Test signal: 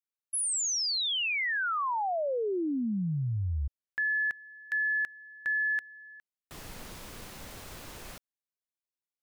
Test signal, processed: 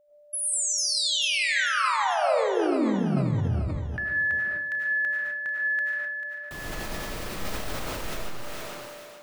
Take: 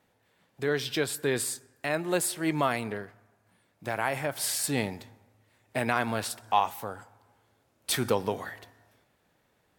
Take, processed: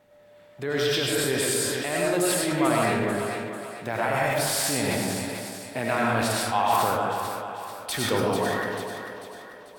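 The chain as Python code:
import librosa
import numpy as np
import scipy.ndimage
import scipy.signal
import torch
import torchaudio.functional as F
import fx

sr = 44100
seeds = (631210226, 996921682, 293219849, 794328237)

p1 = fx.peak_eq(x, sr, hz=11000.0, db=-4.0, octaves=2.4)
p2 = fx.over_compress(p1, sr, threshold_db=-35.0, ratio=-0.5)
p3 = p1 + F.gain(torch.from_numpy(p2), -2.0).numpy()
p4 = p3 + 10.0 ** (-58.0 / 20.0) * np.sin(2.0 * np.pi * 590.0 * np.arange(len(p3)) / sr)
p5 = p4 + fx.echo_thinned(p4, sr, ms=442, feedback_pct=48, hz=210.0, wet_db=-9, dry=0)
p6 = fx.rev_freeverb(p5, sr, rt60_s=0.93, hf_ratio=0.7, predelay_ms=60, drr_db=-3.5)
p7 = fx.sustainer(p6, sr, db_per_s=21.0)
y = F.gain(torch.from_numpy(p7), -2.5).numpy()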